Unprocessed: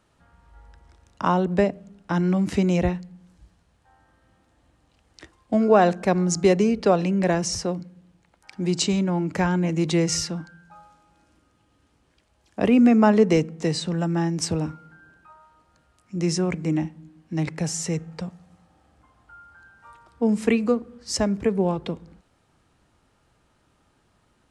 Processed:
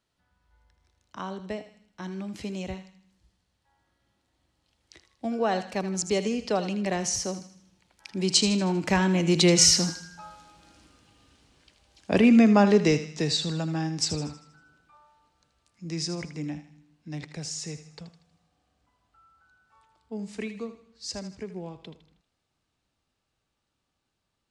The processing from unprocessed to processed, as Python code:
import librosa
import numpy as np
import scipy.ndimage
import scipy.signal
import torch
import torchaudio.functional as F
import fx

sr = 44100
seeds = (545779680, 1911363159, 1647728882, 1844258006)

y = fx.doppler_pass(x, sr, speed_mps=18, closest_m=20.0, pass_at_s=10.56)
y = fx.curve_eq(y, sr, hz=(1400.0, 4300.0, 9500.0), db=(0, 9, 3))
y = fx.echo_thinned(y, sr, ms=79, feedback_pct=48, hz=750.0, wet_db=-10.5)
y = y * 10.0 ** (4.0 / 20.0)